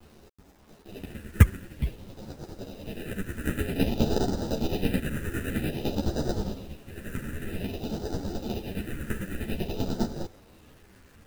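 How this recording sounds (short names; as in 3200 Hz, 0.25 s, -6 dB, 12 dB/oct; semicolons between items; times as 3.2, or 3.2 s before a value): aliases and images of a low sample rate 1100 Hz, jitter 0%; phasing stages 4, 0.52 Hz, lowest notch 750–2300 Hz; a quantiser's noise floor 10-bit, dither none; a shimmering, thickened sound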